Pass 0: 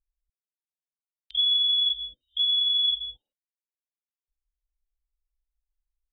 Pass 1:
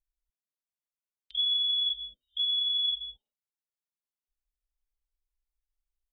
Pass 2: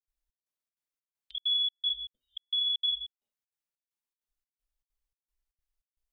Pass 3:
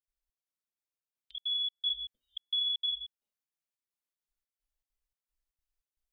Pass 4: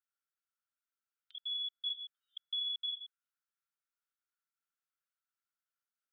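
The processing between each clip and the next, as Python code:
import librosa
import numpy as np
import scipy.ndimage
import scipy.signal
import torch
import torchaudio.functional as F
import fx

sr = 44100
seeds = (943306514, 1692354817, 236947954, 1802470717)

y1 = x + 0.33 * np.pad(x, (int(4.8 * sr / 1000.0), 0))[:len(x)]
y1 = F.gain(torch.from_numpy(y1), -5.5).numpy()
y2 = fx.step_gate(y1, sr, bpm=196, pattern='.xxx..xxx', floor_db=-60.0, edge_ms=4.5)
y3 = fx.rider(y2, sr, range_db=10, speed_s=0.5)
y3 = F.gain(torch.from_numpy(y3), -2.5).numpy()
y4 = fx.ladder_highpass(y3, sr, hz=1300.0, resonance_pct=80)
y4 = F.gain(torch.from_numpy(y4), 5.5).numpy()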